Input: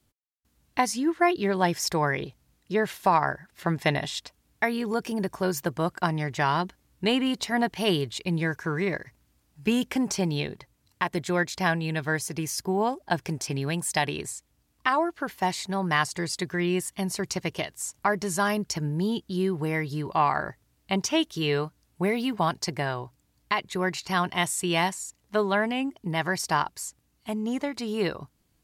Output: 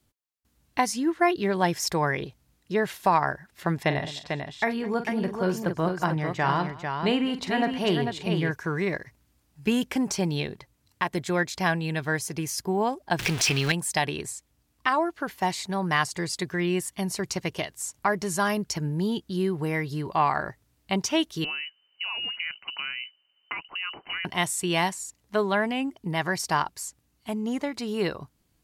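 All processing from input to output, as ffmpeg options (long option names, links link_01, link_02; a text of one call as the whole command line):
ffmpeg -i in.wav -filter_complex "[0:a]asettb=1/sr,asplit=3[link_01][link_02][link_03];[link_01]atrim=end=3.834[link_04];[link_02]atrim=start=3.83:end=8.51,asetpts=PTS-STARTPTS,afade=type=in:duration=0.004:curve=qsin,afade=type=out:start_time=4.676:duration=0.004:curve=qsin,highshelf=frequency=5100:gain=-12,aecho=1:1:44|210|446:0.299|0.106|0.501,atrim=end_sample=206388[link_05];[link_03]atrim=start=8.506[link_06];[link_04][link_05]acrossfade=duration=0.004:curve1=hsin:curve2=qsin[link_07];[link_07][link_06]acrossfade=duration=0.004:curve1=qsin:curve2=hsin,asettb=1/sr,asplit=3[link_08][link_09][link_10];[link_08]atrim=end=13.194[link_11];[link_09]atrim=start=13.19:end=13.72,asetpts=PTS-STARTPTS,afade=type=in:duration=0.004:curve=qsin,afade=type=out:start_time=0.526:duration=0.004:curve=qsin,aeval=exprs='val(0)+0.5*0.0282*sgn(val(0))':channel_layout=same,equalizer=frequency=2900:width_type=o:width=2.1:gain=12.5,bandreject=frequency=610:width=12[link_12];[link_10]atrim=start=13.716[link_13];[link_11][link_12]acrossfade=duration=0.004:curve1=hsin:curve2=qsin[link_14];[link_14][link_13]acrossfade=duration=0.004:curve1=qsin:curve2=hsin,asettb=1/sr,asplit=3[link_15][link_16][link_17];[link_15]atrim=end=21.444[link_18];[link_16]atrim=start=21.44:end=24.25,asetpts=PTS-STARTPTS,afade=type=in:duration=0.004:curve=qsin,afade=type=out:start_time=2.806:duration=0.004:curve=qsin,acompressor=threshold=-28dB:ratio=6:attack=3.2:release=140:knee=1:detection=peak,lowpass=frequency=2600:width_type=q:width=0.5098,lowpass=frequency=2600:width_type=q:width=0.6013,lowpass=frequency=2600:width_type=q:width=0.9,lowpass=frequency=2600:width_type=q:width=2.563,afreqshift=-3100[link_19];[link_17]atrim=start=24.246[link_20];[link_18][link_19]acrossfade=duration=0.004:curve1=hsin:curve2=qsin[link_21];[link_21][link_20]acrossfade=duration=0.004:curve1=qsin:curve2=hsin" out.wav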